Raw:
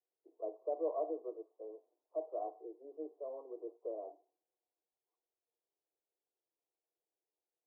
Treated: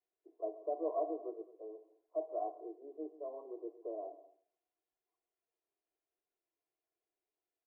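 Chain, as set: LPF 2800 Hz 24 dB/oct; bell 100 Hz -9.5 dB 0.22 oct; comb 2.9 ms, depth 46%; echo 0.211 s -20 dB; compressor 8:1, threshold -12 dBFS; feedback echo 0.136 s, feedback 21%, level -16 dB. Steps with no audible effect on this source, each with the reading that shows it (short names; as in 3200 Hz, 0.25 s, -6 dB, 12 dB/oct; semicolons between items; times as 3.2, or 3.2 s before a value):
LPF 2800 Hz: input band ends at 1100 Hz; bell 100 Hz: input band starts at 250 Hz; compressor, threshold -12 dBFS: input peak -25.5 dBFS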